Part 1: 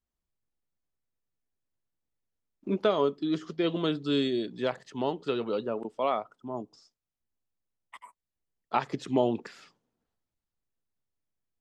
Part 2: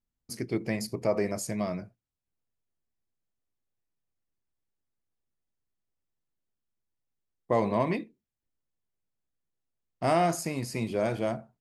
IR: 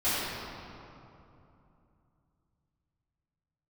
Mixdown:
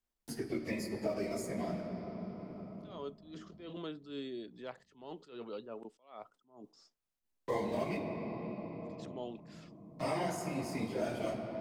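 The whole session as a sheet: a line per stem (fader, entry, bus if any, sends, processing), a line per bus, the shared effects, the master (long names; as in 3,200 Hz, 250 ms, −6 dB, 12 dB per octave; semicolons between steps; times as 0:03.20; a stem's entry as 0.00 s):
−20.0 dB, 0.00 s, no send, level that may rise only so fast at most 130 dB per second
−4.5 dB, 0.00 s, send −16.5 dB, random phases in long frames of 50 ms; dead-zone distortion −50 dBFS; phaser whose notches keep moving one way falling 1.5 Hz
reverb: on, RT60 2.9 s, pre-delay 3 ms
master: parametric band 97 Hz −9 dB 1.3 octaves; multiband upward and downward compressor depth 70%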